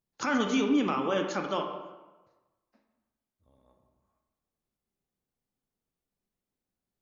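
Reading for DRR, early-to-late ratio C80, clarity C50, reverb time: 4.0 dB, 7.5 dB, 6.0 dB, 1.2 s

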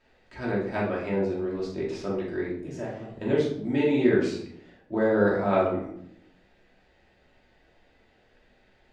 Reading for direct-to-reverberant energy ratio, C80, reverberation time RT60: -6.0 dB, 8.0 dB, 0.70 s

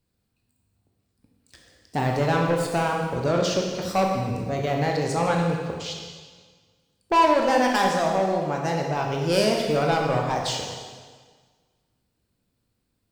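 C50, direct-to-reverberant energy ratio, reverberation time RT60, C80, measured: 2.5 dB, 0.0 dB, 1.6 s, 4.0 dB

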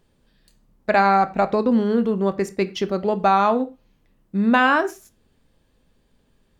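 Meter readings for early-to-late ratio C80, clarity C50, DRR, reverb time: 22.0 dB, 17.5 dB, 11.0 dB, no single decay rate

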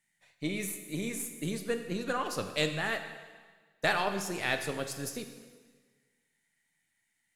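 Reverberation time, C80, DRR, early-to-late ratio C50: 1.5 s, 9.5 dB, 6.5 dB, 8.5 dB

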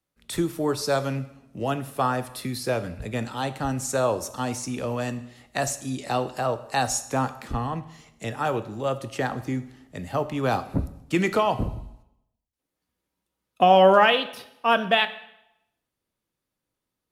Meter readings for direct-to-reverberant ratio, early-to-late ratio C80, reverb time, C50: 11.0 dB, 17.0 dB, 0.85 s, 14.5 dB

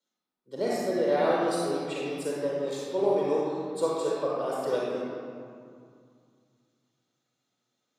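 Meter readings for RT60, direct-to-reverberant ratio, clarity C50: 2.3 s, -6.5 dB, -4.5 dB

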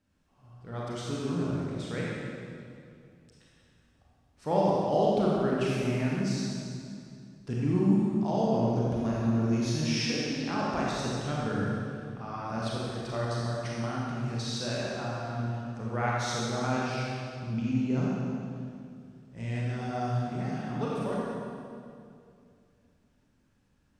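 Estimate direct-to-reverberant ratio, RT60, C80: -5.5 dB, 2.4 s, -1.5 dB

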